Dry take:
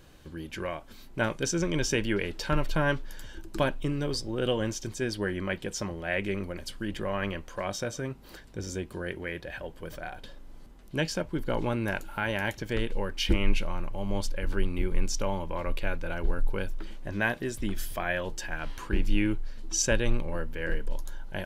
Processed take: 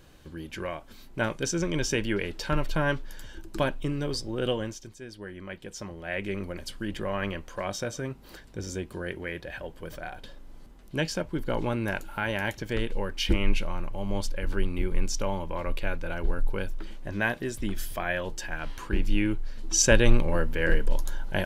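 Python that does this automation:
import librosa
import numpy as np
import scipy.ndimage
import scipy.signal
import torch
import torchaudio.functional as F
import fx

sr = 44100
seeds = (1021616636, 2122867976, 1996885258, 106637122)

y = fx.gain(x, sr, db=fx.line((4.51, 0.0), (5.0, -12.5), (6.5, 0.5), (19.31, 0.5), (20.02, 7.0)))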